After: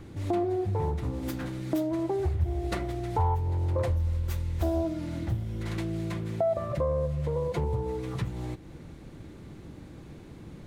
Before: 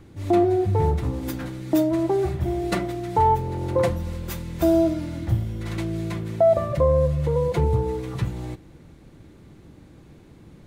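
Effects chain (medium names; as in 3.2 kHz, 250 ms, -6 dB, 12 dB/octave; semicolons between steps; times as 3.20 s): 2.19–4.85 s: resonant low shelf 120 Hz +7.5 dB, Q 3; compression 2:1, threshold -37 dBFS, peak gain reduction 15 dB; loudspeaker Doppler distortion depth 0.34 ms; trim +2.5 dB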